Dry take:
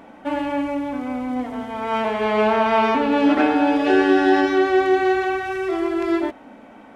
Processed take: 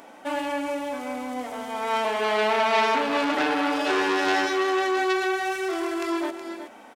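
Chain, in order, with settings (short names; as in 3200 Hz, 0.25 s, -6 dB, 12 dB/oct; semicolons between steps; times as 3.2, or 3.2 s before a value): tone controls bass -14 dB, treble +12 dB; echo 0.37 s -11 dB; core saturation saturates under 2100 Hz; gain -1 dB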